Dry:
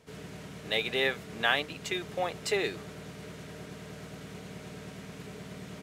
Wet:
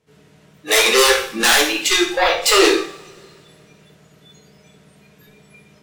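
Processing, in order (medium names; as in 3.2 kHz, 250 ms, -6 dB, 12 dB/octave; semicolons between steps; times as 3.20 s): sine folder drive 19 dB, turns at -9.5 dBFS; spectral noise reduction 30 dB; two-slope reverb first 0.52 s, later 2.7 s, from -26 dB, DRR 0 dB; trim -2 dB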